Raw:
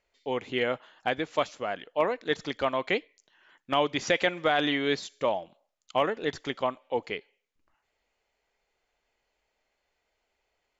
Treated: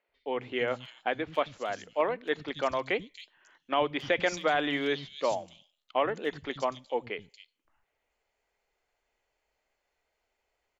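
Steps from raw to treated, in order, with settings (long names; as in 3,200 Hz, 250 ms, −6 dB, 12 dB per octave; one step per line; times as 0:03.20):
three-band delay without the direct sound mids, lows, highs 90/270 ms, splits 200/3,800 Hz
level −1.5 dB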